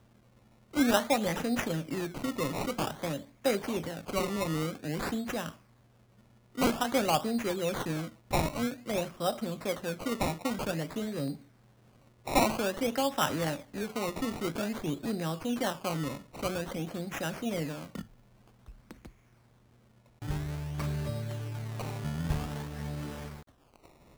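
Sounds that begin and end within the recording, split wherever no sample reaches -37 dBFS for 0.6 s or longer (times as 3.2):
0.74–5.5
6.58–11.35
12.27–18.01
18.91–19.05
20.22–23.36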